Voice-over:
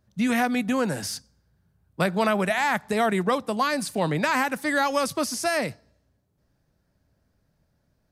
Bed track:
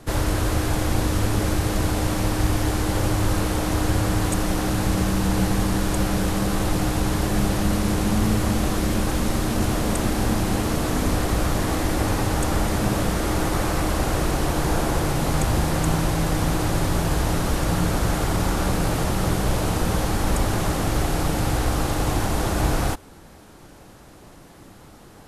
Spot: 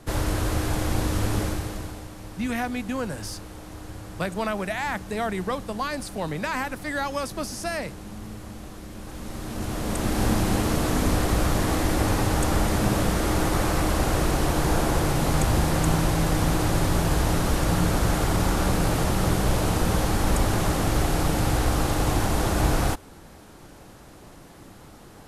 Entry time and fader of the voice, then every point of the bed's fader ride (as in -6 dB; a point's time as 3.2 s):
2.20 s, -5.0 dB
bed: 1.39 s -3 dB
2.1 s -17.5 dB
8.92 s -17.5 dB
10.24 s -0.5 dB